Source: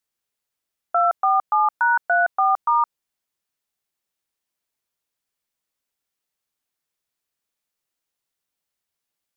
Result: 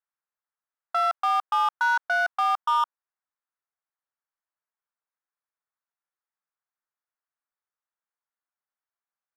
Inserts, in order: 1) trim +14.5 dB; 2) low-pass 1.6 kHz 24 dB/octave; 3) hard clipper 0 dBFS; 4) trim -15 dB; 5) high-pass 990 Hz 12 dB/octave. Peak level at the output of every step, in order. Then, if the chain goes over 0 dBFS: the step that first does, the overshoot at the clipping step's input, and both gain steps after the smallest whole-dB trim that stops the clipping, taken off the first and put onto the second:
+3.0 dBFS, +3.0 dBFS, 0.0 dBFS, -15.0 dBFS, -15.5 dBFS; step 1, 3.0 dB; step 1 +11.5 dB, step 4 -12 dB

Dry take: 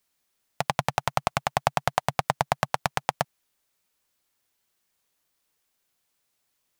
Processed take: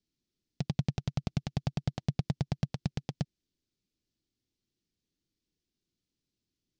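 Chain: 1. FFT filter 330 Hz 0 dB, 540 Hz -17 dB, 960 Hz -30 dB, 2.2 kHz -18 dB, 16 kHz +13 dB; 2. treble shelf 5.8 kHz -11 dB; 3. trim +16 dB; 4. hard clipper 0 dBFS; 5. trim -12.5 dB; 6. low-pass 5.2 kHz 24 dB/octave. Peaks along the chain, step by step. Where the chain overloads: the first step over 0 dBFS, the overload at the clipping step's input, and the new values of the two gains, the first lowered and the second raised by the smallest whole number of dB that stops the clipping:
-5.0 dBFS, -12.5 dBFS, +3.5 dBFS, 0.0 dBFS, -12.5 dBFS, -15.5 dBFS; step 3, 3.5 dB; step 3 +12 dB, step 5 -8.5 dB

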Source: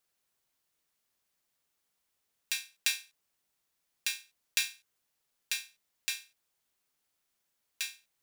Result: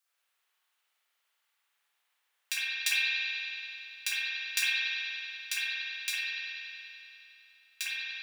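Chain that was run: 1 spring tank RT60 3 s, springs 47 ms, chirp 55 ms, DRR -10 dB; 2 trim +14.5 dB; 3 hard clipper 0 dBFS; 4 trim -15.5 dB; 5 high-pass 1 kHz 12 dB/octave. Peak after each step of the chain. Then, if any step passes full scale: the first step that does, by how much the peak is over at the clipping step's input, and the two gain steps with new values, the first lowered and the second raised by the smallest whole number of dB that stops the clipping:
-6.5 dBFS, +8.0 dBFS, 0.0 dBFS, -15.5 dBFS, -15.0 dBFS; step 2, 8.0 dB; step 2 +6.5 dB, step 4 -7.5 dB

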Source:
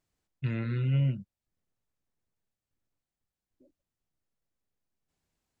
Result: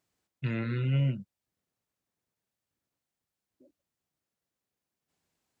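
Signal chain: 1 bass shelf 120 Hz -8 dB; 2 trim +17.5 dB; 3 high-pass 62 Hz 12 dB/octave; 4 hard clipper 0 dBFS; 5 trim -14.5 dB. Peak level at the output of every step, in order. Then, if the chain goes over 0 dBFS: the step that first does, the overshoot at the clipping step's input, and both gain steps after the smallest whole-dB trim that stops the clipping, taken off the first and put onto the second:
-22.5 dBFS, -5.0 dBFS, -5.0 dBFS, -5.0 dBFS, -19.5 dBFS; nothing clips

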